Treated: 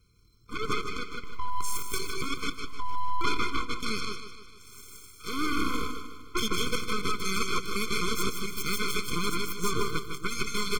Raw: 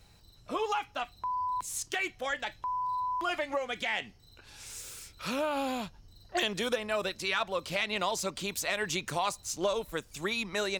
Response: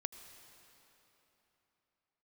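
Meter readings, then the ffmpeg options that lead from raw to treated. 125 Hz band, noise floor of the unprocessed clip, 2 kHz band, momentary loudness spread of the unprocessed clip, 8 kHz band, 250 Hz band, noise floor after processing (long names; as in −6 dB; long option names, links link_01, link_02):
+7.5 dB, −58 dBFS, 0.0 dB, 8 LU, +2.5 dB, +4.5 dB, −51 dBFS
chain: -filter_complex "[0:a]bandreject=frequency=2800:width=8.9,asplit=2[link_01][link_02];[link_02]aecho=0:1:88|159|162|181:0.211|0.562|0.501|0.282[link_03];[link_01][link_03]amix=inputs=2:normalize=0,aeval=exprs='0.15*(cos(1*acos(clip(val(0)/0.15,-1,1)))-cos(1*PI/2))+0.0473*(cos(6*acos(clip(val(0)/0.15,-1,1)))-cos(6*PI/2))+0.0335*(cos(7*acos(clip(val(0)/0.15,-1,1)))-cos(7*PI/2))':channel_layout=same,asplit=2[link_04][link_05];[link_05]aecho=0:1:152|304|456|608|760|912:0.316|0.164|0.0855|0.0445|0.0231|0.012[link_06];[link_04][link_06]amix=inputs=2:normalize=0,afftfilt=real='re*eq(mod(floor(b*sr/1024/510),2),0)':imag='im*eq(mod(floor(b*sr/1024/510),2),0)':win_size=1024:overlap=0.75"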